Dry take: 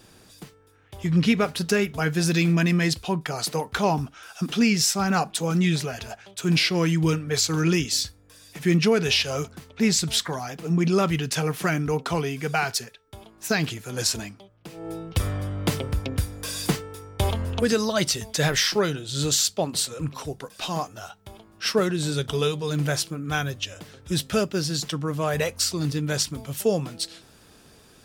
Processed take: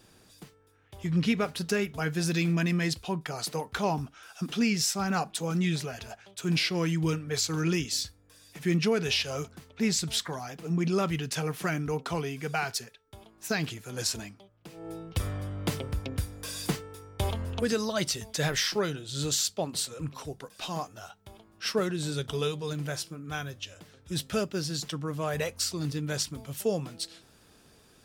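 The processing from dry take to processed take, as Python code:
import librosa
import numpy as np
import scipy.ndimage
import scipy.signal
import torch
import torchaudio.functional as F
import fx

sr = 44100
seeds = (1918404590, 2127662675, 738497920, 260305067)

y = fx.comb_fb(x, sr, f0_hz=86.0, decay_s=0.24, harmonics='all', damping=0.0, mix_pct=40, at=(22.73, 24.16))
y = y * librosa.db_to_amplitude(-6.0)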